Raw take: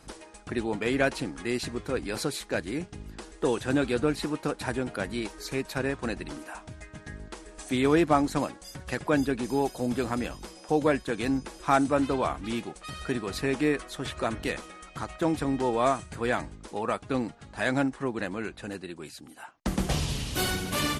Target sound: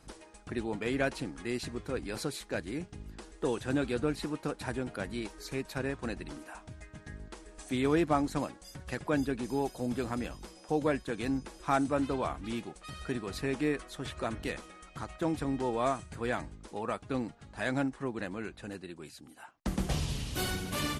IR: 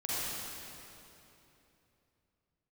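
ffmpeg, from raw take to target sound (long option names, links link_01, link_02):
-af "lowshelf=frequency=200:gain=3.5,volume=-6dB"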